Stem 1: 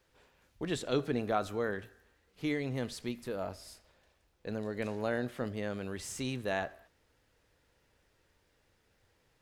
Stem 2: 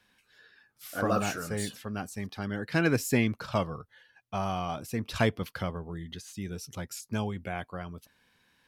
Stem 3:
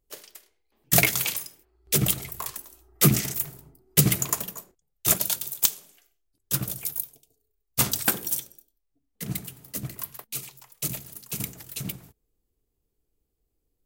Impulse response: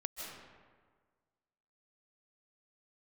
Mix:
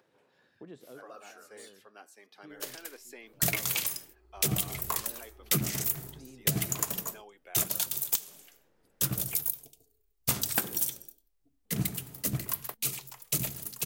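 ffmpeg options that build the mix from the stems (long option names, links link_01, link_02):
-filter_complex "[0:a]highpass=frequency=120:width=0.5412,highpass=frequency=120:width=1.3066,tiltshelf=frequency=1300:gain=8.5,acompressor=mode=upward:threshold=-46dB:ratio=2.5,volume=-12dB[link_01];[1:a]highpass=frequency=340:width=0.5412,highpass=frequency=340:width=1.3066,flanger=delay=2.4:depth=7.2:regen=-87:speed=0.3:shape=triangular,volume=-7.5dB,asplit=2[link_02][link_03];[2:a]acompressor=threshold=-27dB:ratio=16,adelay=2500,volume=3dB[link_04];[link_03]apad=whole_len=415194[link_05];[link_01][link_05]sidechaincompress=threshold=-55dB:ratio=8:attack=16:release=944[link_06];[link_06][link_02]amix=inputs=2:normalize=0,lowshelf=frequency=180:gain=-9.5,alimiter=level_in=13.5dB:limit=-24dB:level=0:latency=1:release=345,volume=-13.5dB,volume=0dB[link_07];[link_04][link_07]amix=inputs=2:normalize=0"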